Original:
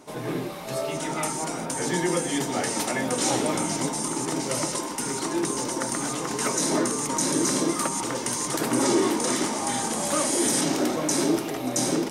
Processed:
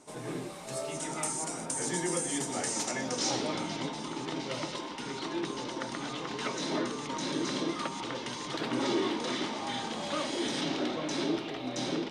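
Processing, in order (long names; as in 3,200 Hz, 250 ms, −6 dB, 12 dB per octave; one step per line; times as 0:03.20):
low-pass filter sweep 8,500 Hz → 3,600 Hz, 0:02.55–0:03.77
level −8 dB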